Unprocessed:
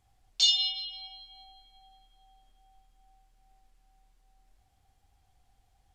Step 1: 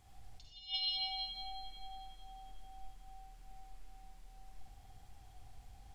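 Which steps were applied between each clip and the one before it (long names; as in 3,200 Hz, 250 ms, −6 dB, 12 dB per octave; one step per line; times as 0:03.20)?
compressor whose output falls as the input rises −39 dBFS, ratio −0.5
convolution reverb RT60 1.0 s, pre-delay 48 ms, DRR 0 dB
level −2.5 dB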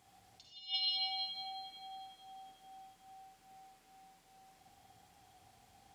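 high-pass filter 180 Hz 12 dB per octave
level +1.5 dB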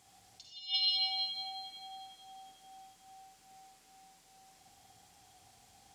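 parametric band 7,000 Hz +8 dB 1.9 octaves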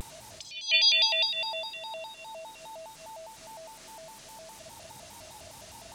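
upward compression, threshold −49 dBFS
pitch modulation by a square or saw wave square 4.9 Hz, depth 250 cents
level +9 dB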